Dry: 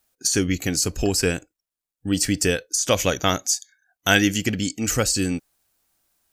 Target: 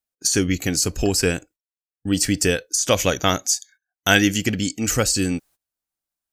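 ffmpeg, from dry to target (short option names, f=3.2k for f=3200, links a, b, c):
-af "agate=range=-20dB:threshold=-48dB:ratio=16:detection=peak,volume=1.5dB"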